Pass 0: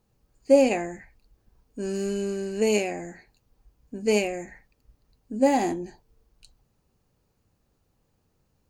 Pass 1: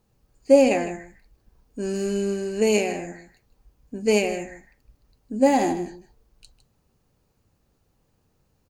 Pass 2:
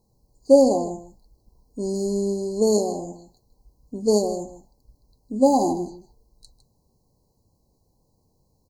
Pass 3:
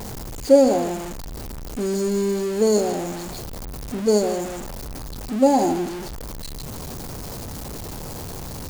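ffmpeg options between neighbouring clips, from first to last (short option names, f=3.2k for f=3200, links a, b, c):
-af "aecho=1:1:156:0.224,volume=2.5dB"
-af "afftfilt=real='re*(1-between(b*sr/4096,1100,3900))':imag='im*(1-between(b*sr/4096,1100,3900))':win_size=4096:overlap=0.75,volume=1dB"
-af "aeval=exprs='val(0)+0.5*0.0447*sgn(val(0))':c=same"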